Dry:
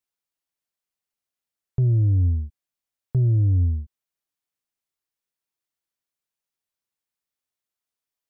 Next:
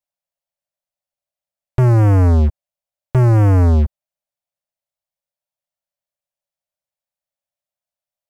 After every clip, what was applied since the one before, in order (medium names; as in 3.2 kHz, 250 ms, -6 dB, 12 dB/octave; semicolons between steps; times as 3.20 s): in parallel at +2 dB: peak limiter -27 dBFS, peak gain reduction 11.5 dB; on the sum: FFT filter 180 Hz 0 dB, 400 Hz -27 dB, 560 Hz +11 dB, 1.1 kHz -4 dB; waveshaping leveller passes 5; trim +2.5 dB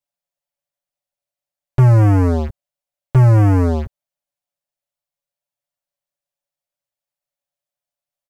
comb 7 ms; trim -1 dB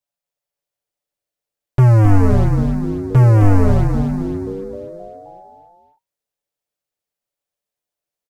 frequency-shifting echo 263 ms, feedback 59%, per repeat -120 Hz, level -4 dB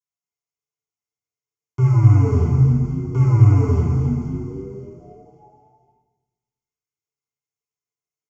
static phaser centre 2.6 kHz, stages 8; small resonant body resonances 450/2100 Hz, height 18 dB, ringing for 45 ms; reverberation RT60 1.1 s, pre-delay 3 ms, DRR -2 dB; trim -13.5 dB